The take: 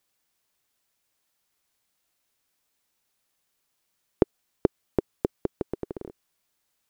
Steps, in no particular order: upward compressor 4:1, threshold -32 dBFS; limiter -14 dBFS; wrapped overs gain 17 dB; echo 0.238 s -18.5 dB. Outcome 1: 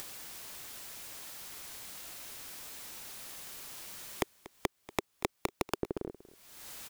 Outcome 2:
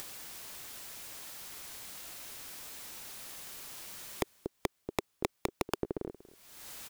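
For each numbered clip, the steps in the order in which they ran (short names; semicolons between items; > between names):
limiter > wrapped overs > upward compressor > echo; upward compressor > echo > limiter > wrapped overs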